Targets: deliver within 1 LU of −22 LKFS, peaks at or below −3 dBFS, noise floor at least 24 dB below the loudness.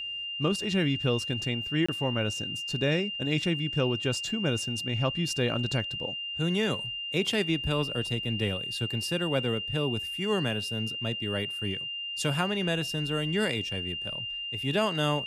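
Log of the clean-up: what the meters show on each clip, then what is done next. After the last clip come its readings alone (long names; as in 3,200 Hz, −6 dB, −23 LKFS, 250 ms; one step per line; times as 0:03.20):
number of dropouts 1; longest dropout 25 ms; interfering tone 2,800 Hz; level of the tone −33 dBFS; integrated loudness −29.0 LKFS; sample peak −11.5 dBFS; target loudness −22.0 LKFS
→ repair the gap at 0:01.86, 25 ms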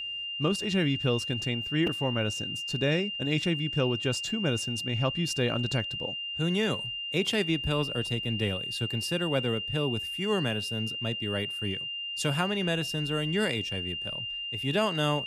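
number of dropouts 0; interfering tone 2,800 Hz; level of the tone −33 dBFS
→ notch filter 2,800 Hz, Q 30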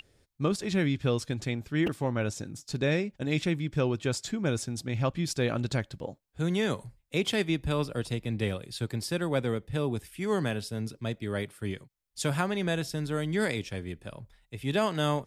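interfering tone none found; integrated loudness −31.0 LKFS; sample peak −12.5 dBFS; target loudness −22.0 LKFS
→ level +9 dB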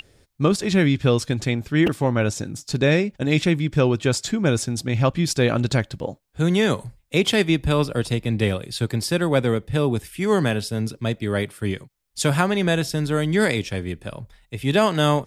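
integrated loudness −22.0 LKFS; sample peak −3.5 dBFS; background noise floor −60 dBFS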